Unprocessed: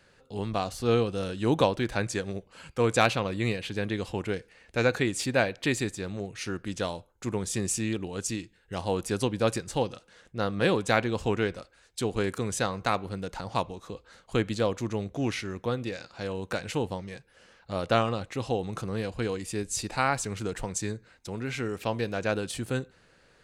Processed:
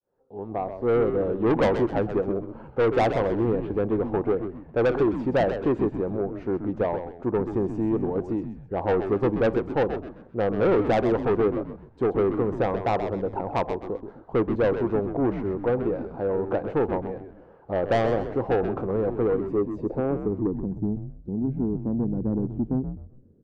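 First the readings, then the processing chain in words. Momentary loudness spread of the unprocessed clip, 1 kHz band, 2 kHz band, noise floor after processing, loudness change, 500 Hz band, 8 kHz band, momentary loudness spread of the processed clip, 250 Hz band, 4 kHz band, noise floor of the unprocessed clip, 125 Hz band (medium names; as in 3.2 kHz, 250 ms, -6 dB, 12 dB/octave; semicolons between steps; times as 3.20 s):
11 LU, +2.5 dB, -4.0 dB, -50 dBFS, +4.0 dB, +6.5 dB, under -20 dB, 8 LU, +6.0 dB, under -10 dB, -62 dBFS, +1.5 dB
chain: fade-in on the opening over 1.35 s; low-pass sweep 870 Hz -> 230 Hz, 19.31–20.69 s; peaking EQ 380 Hz +10 dB 1.4 oct; saturation -17 dBFS, distortion -9 dB; frequency-shifting echo 129 ms, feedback 35%, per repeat -87 Hz, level -8.5 dB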